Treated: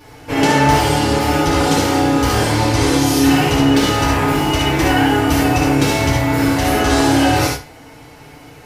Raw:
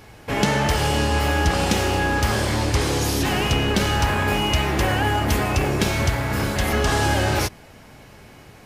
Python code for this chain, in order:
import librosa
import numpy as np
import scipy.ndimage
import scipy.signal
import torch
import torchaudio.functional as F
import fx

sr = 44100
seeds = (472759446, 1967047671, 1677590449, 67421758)

y = fx.room_early_taps(x, sr, ms=(58, 73), db=(-5.5, -4.5))
y = fx.rev_fdn(y, sr, rt60_s=0.35, lf_ratio=0.75, hf_ratio=0.8, size_ms=20.0, drr_db=-5.5)
y = y * librosa.db_to_amplitude(-2.5)